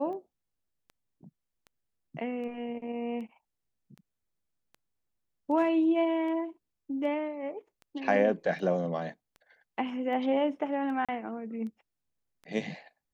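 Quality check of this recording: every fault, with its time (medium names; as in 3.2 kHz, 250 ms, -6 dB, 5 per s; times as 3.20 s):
tick 78 rpm -35 dBFS
11.05–11.09 s: dropout 36 ms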